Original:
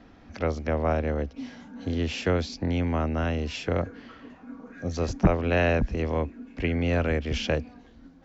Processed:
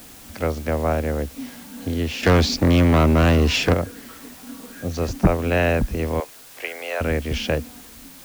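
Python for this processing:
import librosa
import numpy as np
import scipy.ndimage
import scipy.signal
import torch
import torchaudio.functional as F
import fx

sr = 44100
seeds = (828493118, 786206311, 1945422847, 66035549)

y = fx.leveller(x, sr, passes=3, at=(2.23, 3.74))
y = fx.highpass(y, sr, hz=530.0, slope=24, at=(6.2, 7.01))
y = fx.quant_dither(y, sr, seeds[0], bits=8, dither='triangular')
y = y * librosa.db_to_amplitude(3.5)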